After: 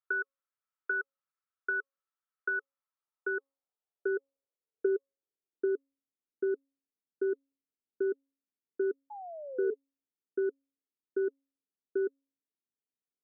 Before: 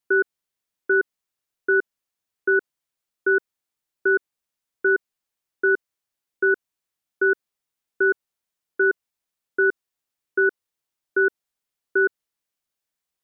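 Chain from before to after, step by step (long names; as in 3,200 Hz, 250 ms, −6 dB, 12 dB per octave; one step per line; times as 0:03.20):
band-pass filter sweep 1,300 Hz → 250 Hz, 0:02.56–0:05.97
downward compressor, threshold −28 dBFS, peak gain reduction 8 dB
hum removal 274.1 Hz, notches 4
sound drawn into the spectrogram fall, 0:09.10–0:09.74, 420–860 Hz −40 dBFS
hollow resonant body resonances 430/1,300 Hz, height 9 dB, ringing for 35 ms
level −3.5 dB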